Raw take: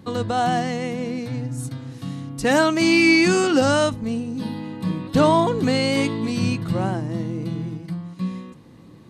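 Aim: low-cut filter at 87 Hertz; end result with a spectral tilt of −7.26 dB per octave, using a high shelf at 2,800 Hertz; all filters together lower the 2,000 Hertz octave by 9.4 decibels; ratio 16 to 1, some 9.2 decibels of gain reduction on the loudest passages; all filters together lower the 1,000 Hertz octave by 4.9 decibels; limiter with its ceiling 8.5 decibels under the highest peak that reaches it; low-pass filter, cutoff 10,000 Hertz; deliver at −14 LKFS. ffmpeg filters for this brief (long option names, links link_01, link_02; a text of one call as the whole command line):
ffmpeg -i in.wav -af "highpass=87,lowpass=10000,equalizer=frequency=1000:width_type=o:gain=-4,equalizer=frequency=2000:width_type=o:gain=-7,highshelf=frequency=2800:gain=-9,acompressor=threshold=-23dB:ratio=16,volume=18dB,alimiter=limit=-5.5dB:level=0:latency=1" out.wav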